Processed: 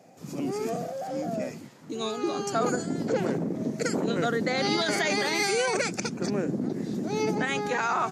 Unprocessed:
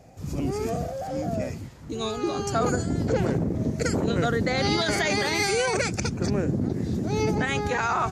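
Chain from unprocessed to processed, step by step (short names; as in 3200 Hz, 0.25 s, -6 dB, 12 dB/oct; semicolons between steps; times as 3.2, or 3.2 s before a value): HPF 170 Hz 24 dB/oct; gain -1.5 dB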